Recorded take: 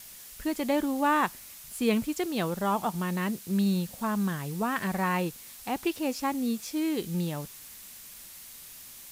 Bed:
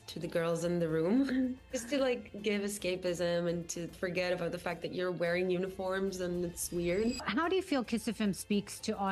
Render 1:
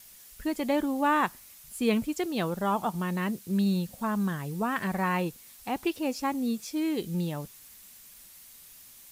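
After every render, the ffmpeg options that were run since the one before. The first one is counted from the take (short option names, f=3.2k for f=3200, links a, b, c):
-af "afftdn=nr=6:nf=-47"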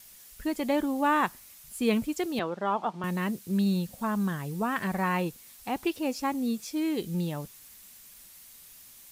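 -filter_complex "[0:a]asettb=1/sr,asplit=3[a][b][c];[a]atrim=end=2.394[d];[b]atrim=start=2.39:end=3.04,asetpts=PTS-STARTPTS,afade=t=in:d=0.004:c=qsin,afade=t=out:st=0.646:d=0.004:c=qsin,highpass=270,lowpass=3.7k[e];[c]atrim=start=3.036[f];[d][e]acrossfade=d=0.004:c1=hsin:c2=qsin[g];[g][f]acrossfade=d=0.004:c1=qsin:c2=hsin"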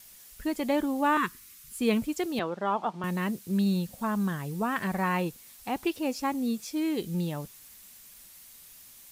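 -filter_complex "[0:a]asettb=1/sr,asplit=3[a][b][c];[a]atrim=end=1.174[d];[b]atrim=start=1.17:end=1.79,asetpts=PTS-STARTPTS,afade=t=in:d=0.004:c=qsin,afade=t=out:st=0.616:d=0.004:c=qsin,asuperstop=centerf=690:order=8:qfactor=1.2[e];[c]atrim=start=1.786[f];[d][e]acrossfade=d=0.004:c1=hsin:c2=qsin[g];[g][f]acrossfade=d=0.004:c1=qsin:c2=hsin"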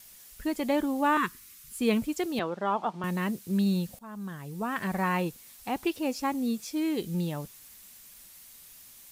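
-filter_complex "[0:a]asplit=2[a][b];[a]atrim=end=3.99,asetpts=PTS-STARTPTS,afade=t=out:st=3.986:d=0.004:c=hsin:silence=0.112202[c];[b]atrim=start=3.99,asetpts=PTS-STARTPTS,afade=t=in:d=0.98:silence=0.112202[d];[c][d]concat=n=2:v=0:a=1"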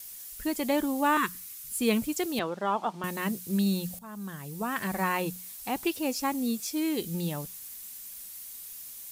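-af "aemphasis=mode=production:type=cd,bandreject=f=60:t=h:w=6,bandreject=f=120:t=h:w=6,bandreject=f=180:t=h:w=6"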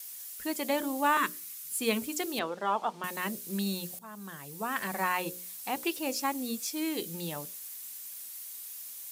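-af "highpass=f=370:p=1,bandreject=f=60:t=h:w=6,bandreject=f=120:t=h:w=6,bandreject=f=180:t=h:w=6,bandreject=f=240:t=h:w=6,bandreject=f=300:t=h:w=6,bandreject=f=360:t=h:w=6,bandreject=f=420:t=h:w=6,bandreject=f=480:t=h:w=6,bandreject=f=540:t=h:w=6,bandreject=f=600:t=h:w=6"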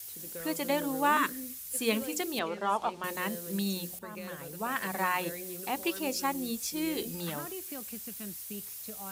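-filter_complex "[1:a]volume=-11.5dB[a];[0:a][a]amix=inputs=2:normalize=0"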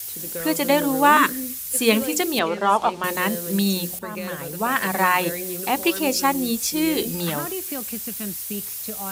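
-af "volume=11dB"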